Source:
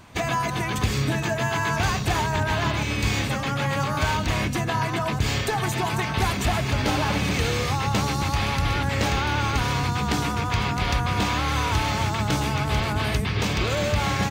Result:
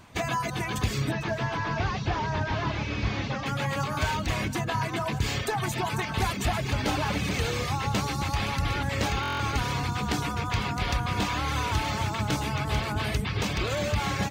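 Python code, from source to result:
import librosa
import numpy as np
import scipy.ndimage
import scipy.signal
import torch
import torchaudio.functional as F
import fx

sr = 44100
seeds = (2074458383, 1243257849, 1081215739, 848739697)

y = fx.delta_mod(x, sr, bps=32000, step_db=-36.0, at=(1.11, 3.46))
y = fx.dereverb_blind(y, sr, rt60_s=0.54)
y = y + 10.0 ** (-18.0 / 20.0) * np.pad(y, (int(452 * sr / 1000.0), 0))[:len(y)]
y = fx.buffer_glitch(y, sr, at_s=(9.21,), block=1024, repeats=7)
y = y * librosa.db_to_amplitude(-3.0)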